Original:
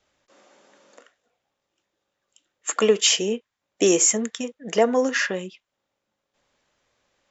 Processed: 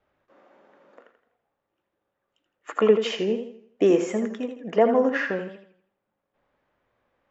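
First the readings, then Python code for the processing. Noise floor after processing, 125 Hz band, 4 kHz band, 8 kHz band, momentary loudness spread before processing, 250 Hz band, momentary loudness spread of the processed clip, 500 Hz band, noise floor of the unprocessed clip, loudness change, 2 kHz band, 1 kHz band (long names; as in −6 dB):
−81 dBFS, +0.5 dB, −11.5 dB, can't be measured, 15 LU, +1.0 dB, 13 LU, +0.5 dB, −81 dBFS, −2.0 dB, −3.5 dB, +0.5 dB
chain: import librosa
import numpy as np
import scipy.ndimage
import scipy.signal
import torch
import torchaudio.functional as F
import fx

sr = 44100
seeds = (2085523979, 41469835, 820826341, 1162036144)

y = scipy.signal.sosfilt(scipy.signal.butter(2, 1700.0, 'lowpass', fs=sr, output='sos'), x)
y = fx.echo_warbled(y, sr, ms=82, feedback_pct=40, rate_hz=2.8, cents=82, wet_db=-8.5)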